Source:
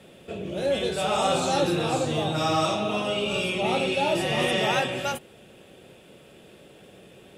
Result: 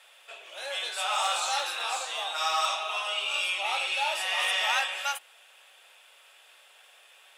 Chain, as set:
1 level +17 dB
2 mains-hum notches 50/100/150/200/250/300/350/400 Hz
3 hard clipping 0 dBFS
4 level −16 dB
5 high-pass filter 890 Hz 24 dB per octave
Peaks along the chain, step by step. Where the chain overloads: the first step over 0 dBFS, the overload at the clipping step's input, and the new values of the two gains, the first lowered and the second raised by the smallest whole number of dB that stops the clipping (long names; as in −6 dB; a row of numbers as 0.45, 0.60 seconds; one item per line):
+7.0, +6.5, 0.0, −16.0, −12.5 dBFS
step 1, 6.5 dB
step 1 +10 dB, step 4 −9 dB